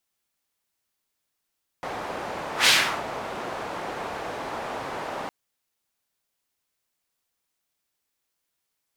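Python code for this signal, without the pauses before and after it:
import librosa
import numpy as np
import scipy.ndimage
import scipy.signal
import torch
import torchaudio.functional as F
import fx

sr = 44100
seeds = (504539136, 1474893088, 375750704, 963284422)

y = fx.whoosh(sr, seeds[0], length_s=3.46, peak_s=0.84, rise_s=0.12, fall_s=0.38, ends_hz=790.0, peak_hz=3300.0, q=1.1, swell_db=16)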